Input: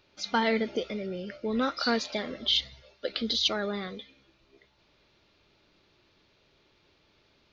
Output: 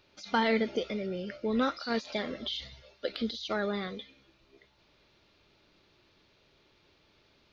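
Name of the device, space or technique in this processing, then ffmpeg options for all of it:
de-esser from a sidechain: -filter_complex "[0:a]asplit=2[s0][s1];[s1]highpass=f=6300:w=0.5412,highpass=f=6300:w=1.3066,apad=whole_len=332061[s2];[s0][s2]sidechaincompress=threshold=0.002:ratio=10:attack=4.6:release=32"

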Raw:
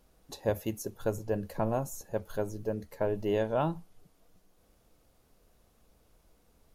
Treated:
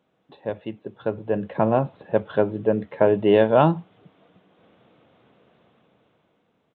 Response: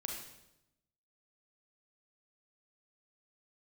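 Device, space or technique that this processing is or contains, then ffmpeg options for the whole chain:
Bluetooth headset: -af "highpass=f=120:w=0.5412,highpass=f=120:w=1.3066,dynaudnorm=f=400:g=7:m=5.01,aresample=8000,aresample=44100" -ar 16000 -c:a sbc -b:a 64k

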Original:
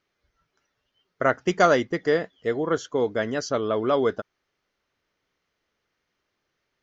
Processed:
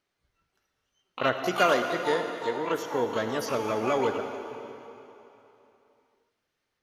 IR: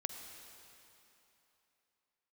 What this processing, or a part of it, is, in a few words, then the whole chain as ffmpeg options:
shimmer-style reverb: -filter_complex "[0:a]asettb=1/sr,asplit=3[s0][s1][s2];[s0]atrim=end=1.344[s3];[s1]atrim=start=1.34:end=2.83,asetpts=PTS-STARTPTS,afade=t=in:d=0.004:c=qsin,afade=t=out:st=1.486:d=0.004:c=qsin,highpass=f=230:p=1[s4];[s2]atrim=start=2.826[s5];[s3][s4]acrossfade=d=0.004:c1=hsin:c2=qsin[s6];[s6][s5]acrossfade=d=0.004:c1=qsin:c2=hsin,asplit=2[s7][s8];[s8]asetrate=88200,aresample=44100,atempo=0.5,volume=0.501[s9];[s7][s9]amix=inputs=2:normalize=0[s10];[1:a]atrim=start_sample=2205[s11];[s10][s11]afir=irnorm=-1:irlink=0,volume=0.668"

